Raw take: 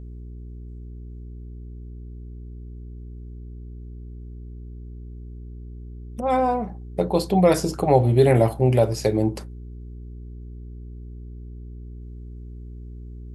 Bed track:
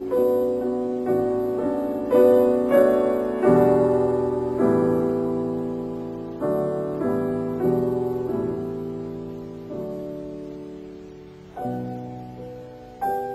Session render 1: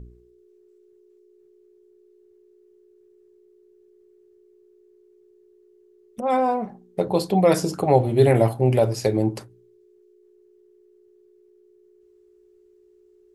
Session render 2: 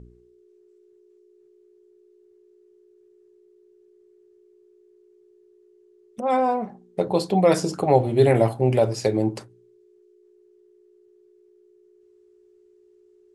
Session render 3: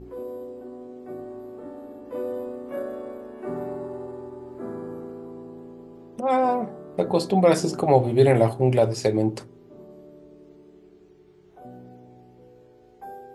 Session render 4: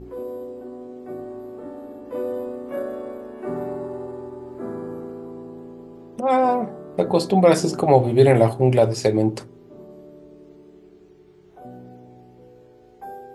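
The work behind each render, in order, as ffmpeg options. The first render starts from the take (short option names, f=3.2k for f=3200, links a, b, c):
-af "bandreject=f=60:t=h:w=4,bandreject=f=120:t=h:w=4,bandreject=f=180:t=h:w=4,bandreject=f=240:t=h:w=4,bandreject=f=300:t=h:w=4"
-af "lowpass=f=10k:w=0.5412,lowpass=f=10k:w=1.3066,lowshelf=f=69:g=-9.5"
-filter_complex "[1:a]volume=-15dB[a];[0:a][a]amix=inputs=2:normalize=0"
-af "volume=3dB,alimiter=limit=-2dB:level=0:latency=1"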